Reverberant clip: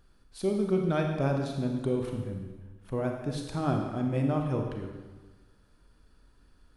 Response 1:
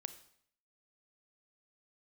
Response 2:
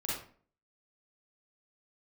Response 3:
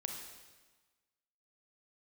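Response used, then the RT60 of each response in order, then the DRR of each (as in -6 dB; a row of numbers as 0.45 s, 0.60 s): 3; 0.65 s, 0.45 s, 1.3 s; 11.5 dB, -7.0 dB, 2.5 dB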